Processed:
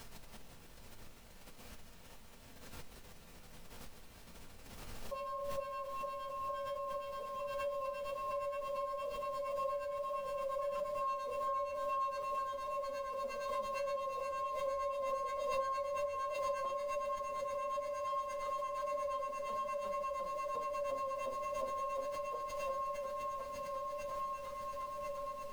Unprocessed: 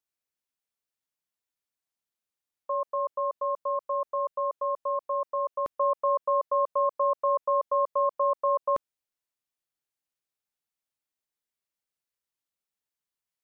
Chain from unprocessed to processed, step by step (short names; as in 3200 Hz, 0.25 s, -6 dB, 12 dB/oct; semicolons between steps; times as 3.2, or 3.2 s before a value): Wiener smoothing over 15 samples; steep high-pass 170 Hz 72 dB/oct; swelling echo 0.187 s, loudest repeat 8, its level -6 dB; flange 0.31 Hz, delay 2.3 ms, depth 5.9 ms, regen +34%; in parallel at -8.5 dB: soft clip -28.5 dBFS, distortion -12 dB; on the sum: time stretch by phase-locked vocoder 1.9×; harmonic tremolo 8.6 Hz, depth 100%, crossover 960 Hz; added noise pink -63 dBFS; compressor 2.5:1, threshold -40 dBFS, peak gain reduction 10 dB; shoebox room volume 140 m³, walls furnished, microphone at 1.6 m; backwards sustainer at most 27 dB/s